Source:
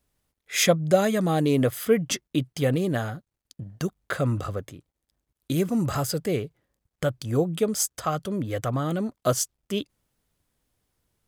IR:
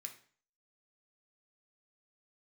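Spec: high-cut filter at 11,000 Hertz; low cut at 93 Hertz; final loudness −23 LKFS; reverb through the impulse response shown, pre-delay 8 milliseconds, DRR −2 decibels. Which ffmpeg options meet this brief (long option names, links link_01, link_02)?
-filter_complex "[0:a]highpass=93,lowpass=11000,asplit=2[link_01][link_02];[1:a]atrim=start_sample=2205,adelay=8[link_03];[link_02][link_03]afir=irnorm=-1:irlink=0,volume=7dB[link_04];[link_01][link_04]amix=inputs=2:normalize=0"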